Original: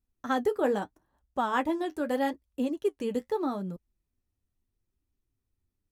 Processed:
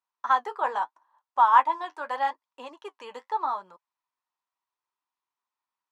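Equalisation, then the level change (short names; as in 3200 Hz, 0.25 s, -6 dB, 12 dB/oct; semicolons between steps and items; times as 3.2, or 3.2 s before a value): resonant high-pass 980 Hz, resonance Q 6.4; LPF 5400 Hz 12 dB/oct; 0.0 dB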